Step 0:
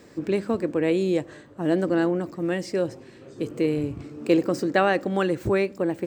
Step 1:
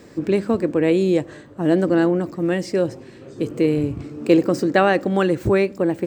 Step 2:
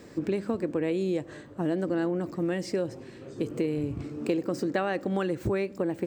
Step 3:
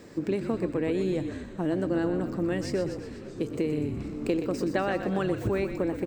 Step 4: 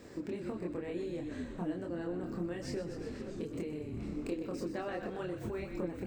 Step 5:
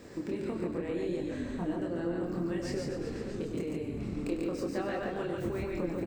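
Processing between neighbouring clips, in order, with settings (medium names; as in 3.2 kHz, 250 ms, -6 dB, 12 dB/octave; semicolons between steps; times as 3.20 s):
bass shelf 400 Hz +3 dB; trim +3.5 dB
compression 4:1, threshold -22 dBFS, peak gain reduction 11.5 dB; trim -3.5 dB
frequency-shifting echo 123 ms, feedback 62%, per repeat -43 Hz, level -9 dB
compression, threshold -32 dBFS, peak gain reduction 10 dB; chorus voices 6, 1.3 Hz, delay 26 ms, depth 3 ms
loudspeakers at several distances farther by 34 m -11 dB, 49 m -3 dB; trim +2.5 dB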